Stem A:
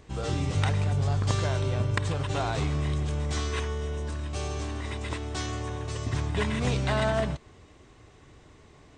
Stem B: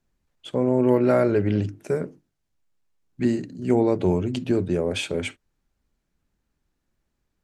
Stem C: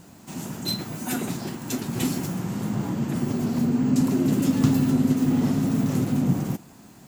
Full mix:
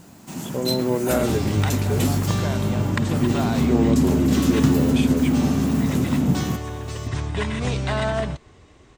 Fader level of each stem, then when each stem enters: +2.5 dB, -3.5 dB, +2.0 dB; 1.00 s, 0.00 s, 0.00 s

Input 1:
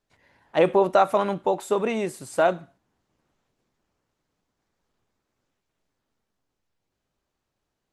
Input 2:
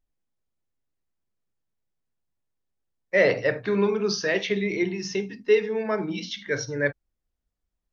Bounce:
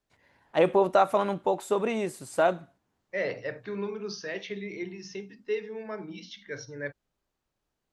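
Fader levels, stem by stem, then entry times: -3.0 dB, -11.0 dB; 0.00 s, 0.00 s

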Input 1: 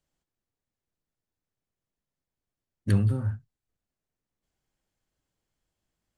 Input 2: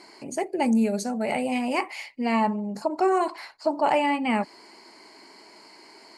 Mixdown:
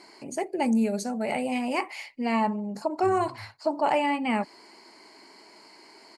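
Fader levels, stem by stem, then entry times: -19.0 dB, -2.0 dB; 0.15 s, 0.00 s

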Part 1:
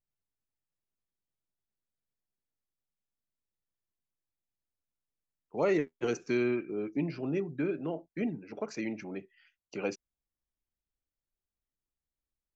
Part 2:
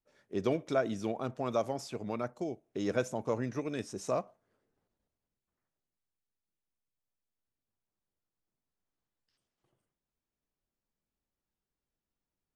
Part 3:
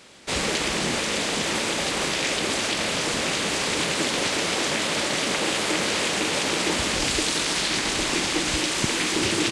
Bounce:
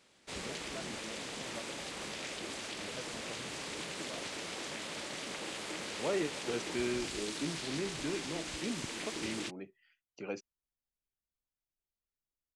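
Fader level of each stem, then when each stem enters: -6.0 dB, -17.5 dB, -17.0 dB; 0.45 s, 0.00 s, 0.00 s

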